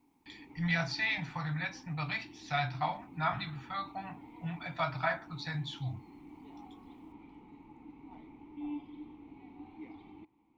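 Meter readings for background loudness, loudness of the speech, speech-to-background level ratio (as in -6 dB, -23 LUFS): -51.0 LUFS, -35.5 LUFS, 15.5 dB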